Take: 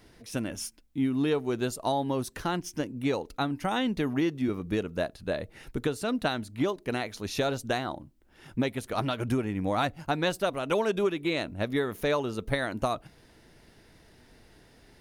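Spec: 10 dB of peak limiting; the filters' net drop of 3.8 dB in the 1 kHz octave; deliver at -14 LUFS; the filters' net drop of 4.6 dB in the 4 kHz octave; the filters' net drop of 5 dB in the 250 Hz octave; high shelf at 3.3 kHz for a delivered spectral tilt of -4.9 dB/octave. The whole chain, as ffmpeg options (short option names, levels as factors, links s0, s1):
-af "equalizer=f=250:t=o:g=-6,equalizer=f=1000:t=o:g=-5,highshelf=f=3300:g=4,equalizer=f=4000:t=o:g=-8,volume=13.3,alimiter=limit=0.75:level=0:latency=1"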